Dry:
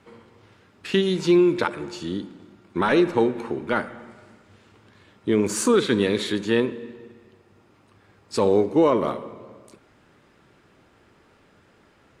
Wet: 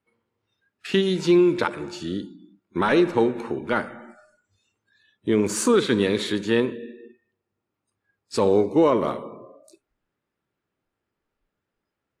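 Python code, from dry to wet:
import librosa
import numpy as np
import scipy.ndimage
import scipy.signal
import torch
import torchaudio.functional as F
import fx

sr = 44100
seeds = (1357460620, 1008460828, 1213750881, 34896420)

y = fx.noise_reduce_blind(x, sr, reduce_db=25)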